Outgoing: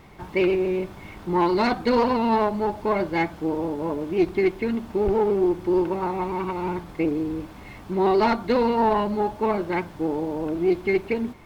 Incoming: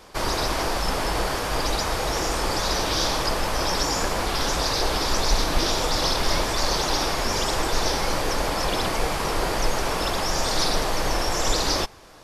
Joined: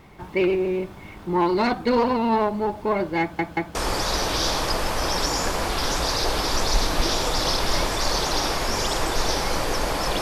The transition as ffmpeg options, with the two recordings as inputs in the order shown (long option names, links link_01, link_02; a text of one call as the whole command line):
ffmpeg -i cue0.wav -i cue1.wav -filter_complex "[0:a]apad=whole_dur=10.21,atrim=end=10.21,asplit=3[link_01][link_02][link_03];[link_01]atrim=end=3.392[link_04];[link_02]atrim=start=3.208:end=3.392[link_05];[link_03]atrim=start=3.208:end=3.392[link_06];[1:a]atrim=start=2.318:end=8.78[link_07];[link_04][link_05]acrossfade=duration=0.004:curve1=hsin:curve2=hsin[link_08];[link_08][link_06]acrossfade=duration=0.004:curve1=hsin:curve2=hsin[link_09];[link_09][link_07]acrossfade=duration=0.004:curve1=hsin:curve2=hsin" out.wav